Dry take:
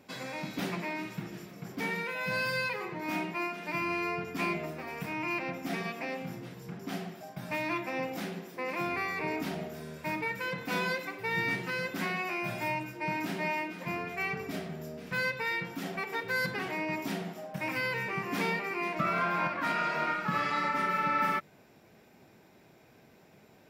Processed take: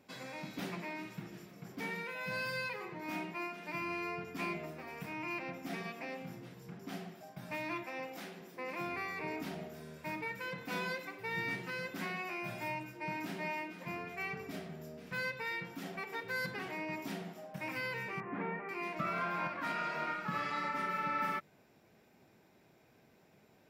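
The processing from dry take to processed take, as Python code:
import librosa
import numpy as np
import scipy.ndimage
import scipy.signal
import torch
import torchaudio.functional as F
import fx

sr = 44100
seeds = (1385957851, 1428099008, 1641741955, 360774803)

y = fx.low_shelf(x, sr, hz=240.0, db=-11.0, at=(7.83, 8.41))
y = fx.lowpass(y, sr, hz=1900.0, slope=24, at=(18.2, 18.69))
y = F.gain(torch.from_numpy(y), -6.5).numpy()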